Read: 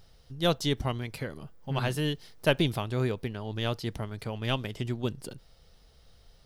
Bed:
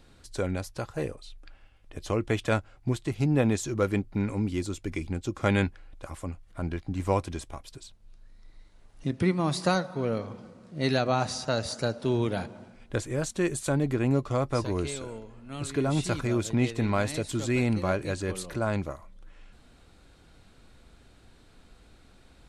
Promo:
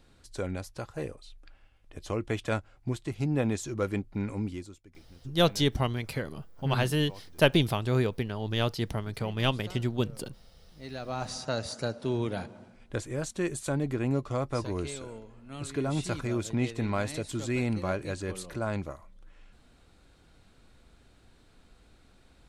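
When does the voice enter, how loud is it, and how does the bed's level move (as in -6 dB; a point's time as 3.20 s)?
4.95 s, +2.5 dB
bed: 4.47 s -4 dB
4.90 s -23 dB
10.62 s -23 dB
11.34 s -3.5 dB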